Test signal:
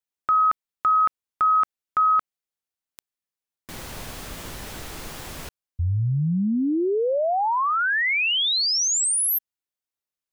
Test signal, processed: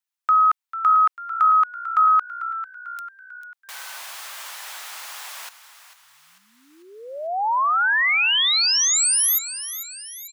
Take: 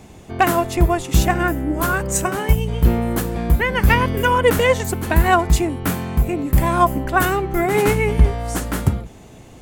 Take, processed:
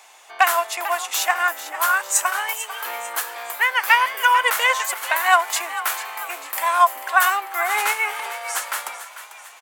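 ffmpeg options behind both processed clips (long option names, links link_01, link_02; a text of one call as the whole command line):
ffmpeg -i in.wav -filter_complex "[0:a]highpass=frequency=830:width=0.5412,highpass=frequency=830:width=1.3066,asplit=6[link_01][link_02][link_03][link_04][link_05][link_06];[link_02]adelay=445,afreqshift=62,volume=-13dB[link_07];[link_03]adelay=890,afreqshift=124,volume=-18.8dB[link_08];[link_04]adelay=1335,afreqshift=186,volume=-24.7dB[link_09];[link_05]adelay=1780,afreqshift=248,volume=-30.5dB[link_10];[link_06]adelay=2225,afreqshift=310,volume=-36.4dB[link_11];[link_01][link_07][link_08][link_09][link_10][link_11]amix=inputs=6:normalize=0,volume=3dB" out.wav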